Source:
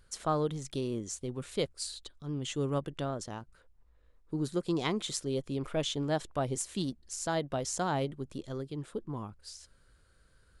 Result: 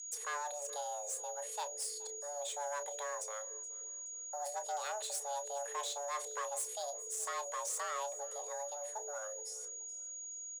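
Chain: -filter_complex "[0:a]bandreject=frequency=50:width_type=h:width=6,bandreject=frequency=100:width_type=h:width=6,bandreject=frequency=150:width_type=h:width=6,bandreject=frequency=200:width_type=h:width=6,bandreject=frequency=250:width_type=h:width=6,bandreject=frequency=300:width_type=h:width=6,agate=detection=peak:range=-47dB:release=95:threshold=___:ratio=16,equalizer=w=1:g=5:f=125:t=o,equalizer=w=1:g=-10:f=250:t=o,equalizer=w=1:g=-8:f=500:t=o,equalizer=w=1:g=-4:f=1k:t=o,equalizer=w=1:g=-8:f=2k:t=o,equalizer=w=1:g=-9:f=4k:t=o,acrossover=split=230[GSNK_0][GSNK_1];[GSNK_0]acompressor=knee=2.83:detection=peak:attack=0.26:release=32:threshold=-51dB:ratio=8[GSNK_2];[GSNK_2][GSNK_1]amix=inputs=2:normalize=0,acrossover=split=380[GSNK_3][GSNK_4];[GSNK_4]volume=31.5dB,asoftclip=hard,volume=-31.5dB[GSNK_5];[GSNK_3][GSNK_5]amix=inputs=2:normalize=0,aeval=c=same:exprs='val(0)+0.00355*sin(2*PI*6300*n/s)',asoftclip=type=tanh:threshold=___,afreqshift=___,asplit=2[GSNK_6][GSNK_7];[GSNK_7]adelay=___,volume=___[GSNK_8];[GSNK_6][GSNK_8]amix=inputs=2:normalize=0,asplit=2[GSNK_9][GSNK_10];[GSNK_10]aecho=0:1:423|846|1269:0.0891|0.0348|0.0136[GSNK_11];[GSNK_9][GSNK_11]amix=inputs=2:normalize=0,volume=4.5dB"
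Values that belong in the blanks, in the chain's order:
-57dB, -38.5dB, 430, 30, -12dB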